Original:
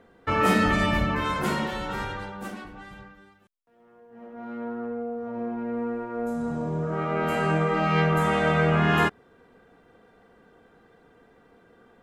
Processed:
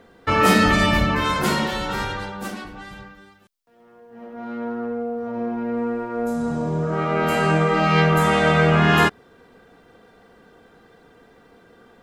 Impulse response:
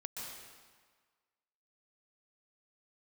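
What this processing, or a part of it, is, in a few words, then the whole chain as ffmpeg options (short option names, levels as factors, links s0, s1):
presence and air boost: -af "equalizer=f=4700:t=o:w=1.1:g=5.5,highshelf=f=9900:g=6.5,volume=1.78"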